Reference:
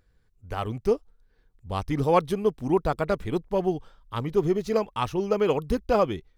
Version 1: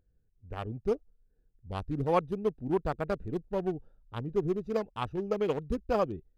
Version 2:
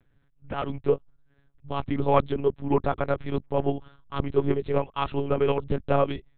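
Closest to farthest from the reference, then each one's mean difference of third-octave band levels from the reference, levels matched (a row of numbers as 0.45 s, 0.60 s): 1, 2; 3.5 dB, 7.0 dB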